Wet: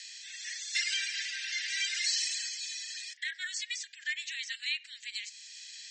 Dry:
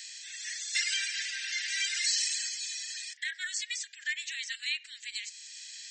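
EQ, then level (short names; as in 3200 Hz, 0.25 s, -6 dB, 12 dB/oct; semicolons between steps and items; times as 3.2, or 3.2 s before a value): HPF 1400 Hz 12 dB/oct; LPF 6600 Hz 12 dB/oct; 0.0 dB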